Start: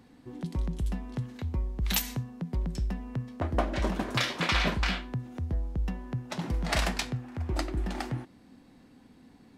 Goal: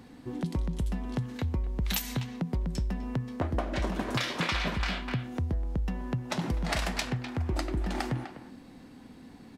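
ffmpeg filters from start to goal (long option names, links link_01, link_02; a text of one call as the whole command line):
ffmpeg -i in.wav -filter_complex "[0:a]asplit=2[link_01][link_02];[link_02]adelay=250,highpass=300,lowpass=3400,asoftclip=type=hard:threshold=-22dB,volume=-12dB[link_03];[link_01][link_03]amix=inputs=2:normalize=0,acompressor=threshold=-33dB:ratio=6,volume=6dB" out.wav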